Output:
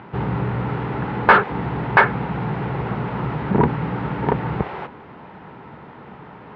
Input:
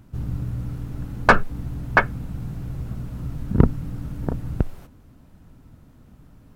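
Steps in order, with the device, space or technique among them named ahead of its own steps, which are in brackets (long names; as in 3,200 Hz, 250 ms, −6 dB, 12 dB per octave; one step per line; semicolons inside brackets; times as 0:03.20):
overdrive pedal into a guitar cabinet (mid-hump overdrive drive 32 dB, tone 1,500 Hz, clips at −1 dBFS; loudspeaker in its box 89–3,400 Hz, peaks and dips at 100 Hz −7 dB, 270 Hz −9 dB, 410 Hz +5 dB, 620 Hz −4 dB, 880 Hz +8 dB, 2,000 Hz +4 dB)
level −2.5 dB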